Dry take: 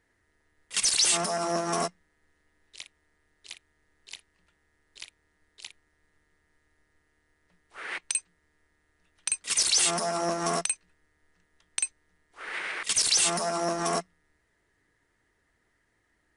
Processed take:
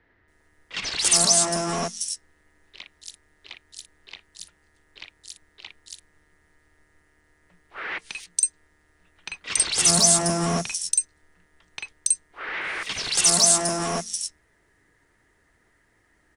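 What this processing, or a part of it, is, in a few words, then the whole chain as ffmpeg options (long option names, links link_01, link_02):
one-band saturation: -filter_complex "[0:a]acrossover=split=220|4000[link_01][link_02][link_03];[link_02]asoftclip=type=tanh:threshold=-34dB[link_04];[link_01][link_04][link_03]amix=inputs=3:normalize=0,asettb=1/sr,asplit=3[link_05][link_06][link_07];[link_05]atrim=end=0.974[link_08];[link_06]atrim=start=0.97:end=1.72,asetpts=PTS-STARTPTS,afade=type=in:duration=0.004:curve=qsin,afade=type=out:start_time=0.746:duration=0.004:curve=qsin,lowpass=9200[link_09];[link_07]atrim=start=1.716[link_10];[link_08][link_09]acrossfade=duration=0.004:curve1=hsin:curve2=qsin[link_11];[link_11][link_10]acrossfade=duration=0.004:curve1=qsin:curve2=hsin,bandreject=frequency=226.3:width_type=h:width=4,bandreject=frequency=452.6:width_type=h:width=4,asettb=1/sr,asplit=3[link_12][link_13][link_14];[link_12]atrim=end=9.764[link_15];[link_13]atrim=start=9.76:end=10.7,asetpts=PTS-STARTPTS,afade=type=in:duration=0.004:curve=qsin,afade=type=out:start_time=0.936:duration=0.004:curve=qsin,equalizer=frequency=120:width_type=o:width=2.1:gain=8[link_16];[link_14]atrim=start=10.696[link_17];[link_15][link_16]acrossfade=duration=0.004:curve1=hsin:curve2=qsin[link_18];[link_18][link_17]acrossfade=duration=0.004:curve1=qsin:curve2=hsin,acrossover=split=3900[link_19][link_20];[link_20]adelay=280[link_21];[link_19][link_21]amix=inputs=2:normalize=0,volume=8dB"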